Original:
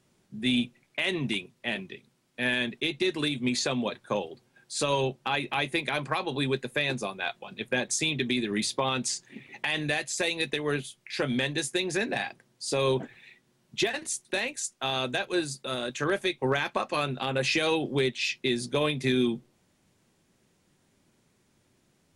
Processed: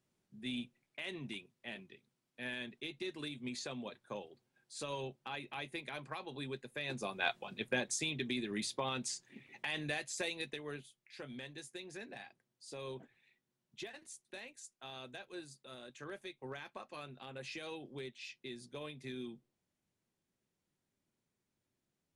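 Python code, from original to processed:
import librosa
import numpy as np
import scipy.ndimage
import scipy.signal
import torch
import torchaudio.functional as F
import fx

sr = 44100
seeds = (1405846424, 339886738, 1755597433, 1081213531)

y = fx.gain(x, sr, db=fx.line((6.76, -15.0), (7.27, -2.0), (8.07, -10.0), (10.21, -10.0), (11.01, -19.5)))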